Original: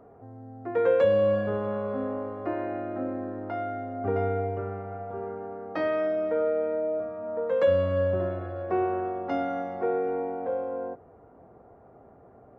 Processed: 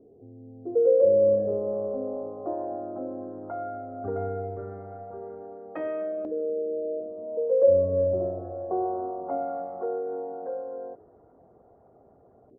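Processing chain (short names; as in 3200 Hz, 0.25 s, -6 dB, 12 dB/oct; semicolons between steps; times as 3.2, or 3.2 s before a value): formant sharpening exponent 1.5; LFO low-pass saw up 0.16 Hz 350–3200 Hz; frequency-shifting echo 0.247 s, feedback 34%, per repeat -100 Hz, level -24 dB; gain -4.5 dB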